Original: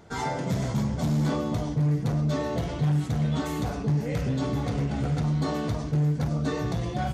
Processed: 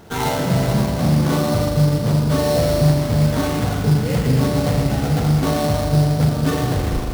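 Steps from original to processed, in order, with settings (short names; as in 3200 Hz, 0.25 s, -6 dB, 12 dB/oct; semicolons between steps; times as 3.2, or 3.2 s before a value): tape stop at the end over 0.44 s; spring tank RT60 3.1 s, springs 39 ms, chirp 80 ms, DRR 0 dB; sample-rate reducer 4900 Hz, jitter 20%; gain +7.5 dB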